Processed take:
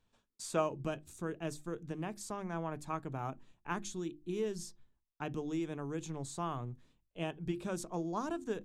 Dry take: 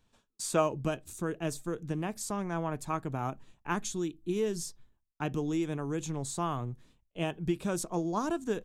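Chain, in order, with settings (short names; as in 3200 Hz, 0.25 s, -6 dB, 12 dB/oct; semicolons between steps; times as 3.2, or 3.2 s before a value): high shelf 9000 Hz -8 dB; notches 50/100/150/200/250/300/350 Hz; gain -5 dB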